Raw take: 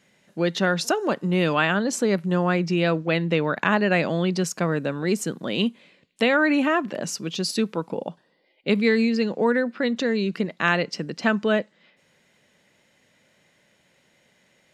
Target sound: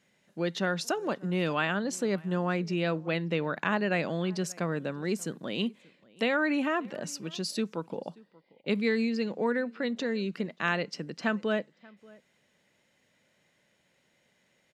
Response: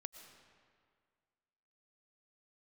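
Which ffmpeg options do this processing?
-filter_complex "[0:a]asplit=2[link_01][link_02];[link_02]adelay=583.1,volume=-24dB,highshelf=frequency=4000:gain=-13.1[link_03];[link_01][link_03]amix=inputs=2:normalize=0,volume=-7.5dB"

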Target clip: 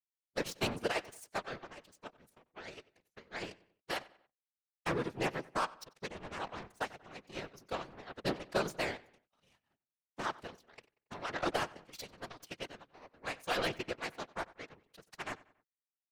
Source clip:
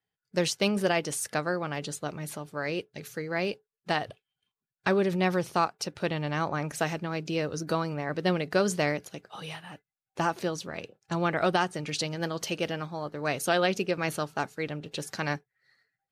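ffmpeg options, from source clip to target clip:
ffmpeg -i in.wav -filter_complex "[0:a]bandreject=frequency=172.5:width_type=h:width=4,bandreject=frequency=345:width_type=h:width=4,bandreject=frequency=517.5:width_type=h:width=4,bandreject=frequency=690:width_type=h:width=4,bandreject=frequency=862.5:width_type=h:width=4,aeval=exprs='0.282*(cos(1*acos(clip(val(0)/0.282,-1,1)))-cos(1*PI/2))+0.0398*(cos(7*acos(clip(val(0)/0.282,-1,1)))-cos(7*PI/2))':channel_layout=same,afftfilt=real='hypot(re,im)*cos(2*PI*random(0))':imag='hypot(re,im)*sin(2*PI*random(1))':win_size=512:overlap=0.75,asplit=3[link_01][link_02][link_03];[link_02]asetrate=33038,aresample=44100,atempo=1.33484,volume=-15dB[link_04];[link_03]asetrate=37084,aresample=44100,atempo=1.18921,volume=-14dB[link_05];[link_01][link_04][link_05]amix=inputs=3:normalize=0,asplit=2[link_06][link_07];[link_07]adelay=93,lowpass=frequency=4000:poles=1,volume=-20dB,asplit=2[link_08][link_09];[link_09]adelay=93,lowpass=frequency=4000:poles=1,volume=0.43,asplit=2[link_10][link_11];[link_11]adelay=93,lowpass=frequency=4000:poles=1,volume=0.43[link_12];[link_08][link_10][link_12]amix=inputs=3:normalize=0[link_13];[link_06][link_13]amix=inputs=2:normalize=0,volume=-1dB" out.wav

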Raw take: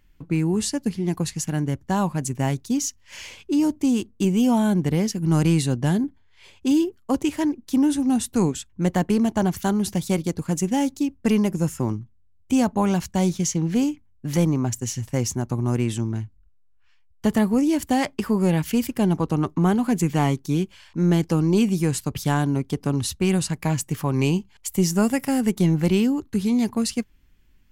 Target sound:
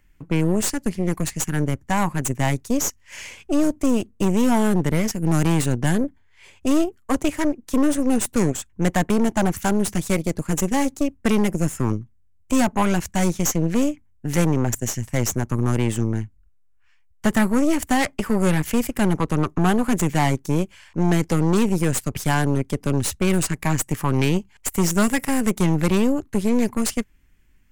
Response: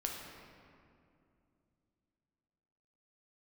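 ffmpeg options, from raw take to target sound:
-filter_complex "[0:a]equalizer=frequency=2000:width_type=o:width=1:gain=5,equalizer=frequency=4000:width_type=o:width=1:gain=-6,equalizer=frequency=8000:width_type=o:width=1:gain=5,aeval=exprs='0.501*(cos(1*acos(clip(val(0)/0.501,-1,1)))-cos(1*PI/2))+0.0708*(cos(8*acos(clip(val(0)/0.501,-1,1)))-cos(8*PI/2))':channel_layout=same,acrossover=split=490|6000[link_01][link_02][link_03];[link_01]asoftclip=type=hard:threshold=-12.5dB[link_04];[link_04][link_02][link_03]amix=inputs=3:normalize=0"

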